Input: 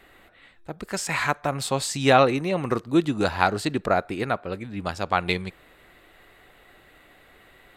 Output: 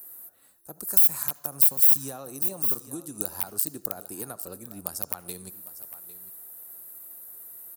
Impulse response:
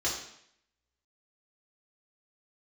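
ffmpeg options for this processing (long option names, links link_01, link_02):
-filter_complex "[0:a]equalizer=frequency=2100:width_type=o:width=0.33:gain=-13.5,acompressor=threshold=-26dB:ratio=5,highshelf=frequency=4500:width_type=q:width=3:gain=11.5,aeval=exprs='(mod(5.62*val(0)+1,2)-1)/5.62':channel_layout=same,highpass=frequency=120:poles=1,aecho=1:1:802:0.141,acrossover=split=290[link_01][link_02];[link_02]acompressor=threshold=-28dB:ratio=6[link_03];[link_01][link_03]amix=inputs=2:normalize=0,aexciter=amount=9.1:drive=9:freq=9700,asplit=2[link_04][link_05];[1:a]atrim=start_sample=2205,adelay=67[link_06];[link_05][link_06]afir=irnorm=-1:irlink=0,volume=-26dB[link_07];[link_04][link_07]amix=inputs=2:normalize=0,volume=-8.5dB"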